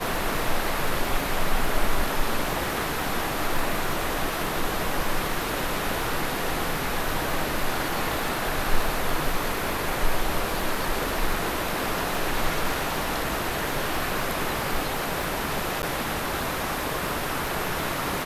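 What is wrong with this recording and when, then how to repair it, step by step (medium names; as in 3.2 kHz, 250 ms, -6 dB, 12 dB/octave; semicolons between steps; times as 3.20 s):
crackle 25 per s -28 dBFS
15.82–15.83 s: dropout 9.7 ms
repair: de-click; interpolate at 15.82 s, 9.7 ms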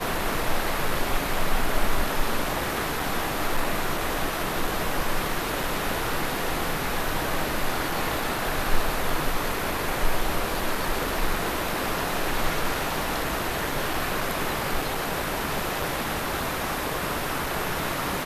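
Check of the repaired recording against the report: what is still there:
nothing left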